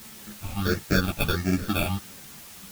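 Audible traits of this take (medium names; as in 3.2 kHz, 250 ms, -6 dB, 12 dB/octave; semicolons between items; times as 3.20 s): aliases and images of a low sample rate 1 kHz, jitter 0%; phasing stages 6, 1.5 Hz, lowest notch 430–1000 Hz; a quantiser's noise floor 8-bit, dither triangular; a shimmering, thickened sound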